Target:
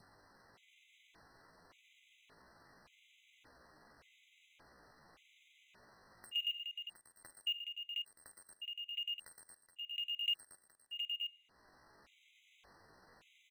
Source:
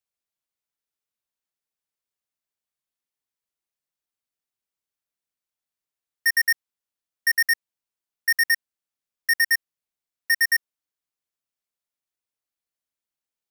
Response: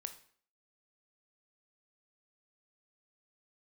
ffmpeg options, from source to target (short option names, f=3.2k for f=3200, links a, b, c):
-filter_complex "[0:a]lowpass=1.6k,adynamicequalizer=threshold=0.0112:dfrequency=1000:dqfactor=0.87:tfrequency=1000:tqfactor=0.87:attack=5:release=100:ratio=0.375:range=2:mode=cutabove:tftype=bell,acompressor=mode=upward:threshold=-37dB:ratio=2.5,alimiter=limit=-23.5dB:level=0:latency=1:release=14,acompressor=threshold=-33dB:ratio=6,acrusher=bits=4:mode=log:mix=0:aa=0.000001,aecho=1:1:55|73|115|418|715:0.119|0.119|0.237|0.282|0.501,asetrate=68011,aresample=44100,atempo=0.64842,asplit=2[a][b];[1:a]atrim=start_sample=2205,asetrate=27783,aresample=44100[c];[b][c]afir=irnorm=-1:irlink=0,volume=-7dB[d];[a][d]amix=inputs=2:normalize=0,afftfilt=real='re*gt(sin(2*PI*0.87*pts/sr)*(1-2*mod(floor(b*sr/1024/2000),2)),0)':imag='im*gt(sin(2*PI*0.87*pts/sr)*(1-2*mod(floor(b*sr/1024/2000),2)),0)':win_size=1024:overlap=0.75,volume=-2dB"